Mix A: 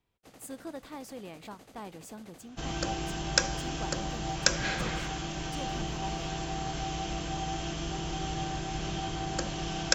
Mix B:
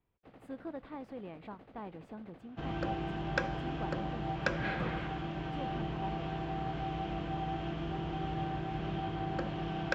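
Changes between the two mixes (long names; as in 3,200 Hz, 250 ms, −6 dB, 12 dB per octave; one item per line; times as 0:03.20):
second sound: add high-pass filter 67 Hz
master: add high-frequency loss of the air 480 metres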